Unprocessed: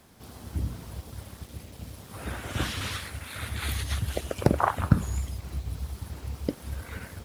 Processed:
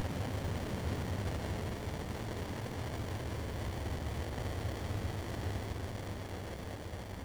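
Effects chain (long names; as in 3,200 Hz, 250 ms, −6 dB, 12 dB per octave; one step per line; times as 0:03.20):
extreme stretch with random phases 43×, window 0.10 s, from 0:02.84
windowed peak hold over 33 samples
level −2.5 dB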